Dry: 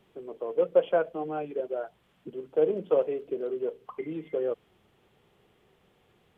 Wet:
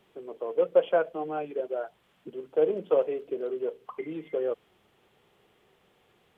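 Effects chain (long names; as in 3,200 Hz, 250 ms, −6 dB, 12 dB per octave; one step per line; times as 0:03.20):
low-shelf EQ 260 Hz −7.5 dB
level +2 dB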